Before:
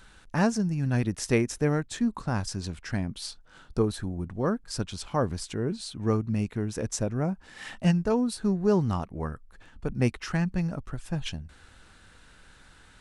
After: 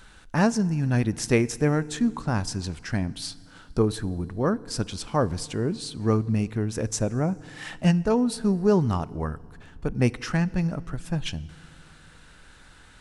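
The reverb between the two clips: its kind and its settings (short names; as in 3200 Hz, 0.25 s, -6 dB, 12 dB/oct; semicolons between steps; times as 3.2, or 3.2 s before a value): FDN reverb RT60 2.1 s, low-frequency decay 1.3×, high-frequency decay 0.9×, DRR 19 dB; gain +3 dB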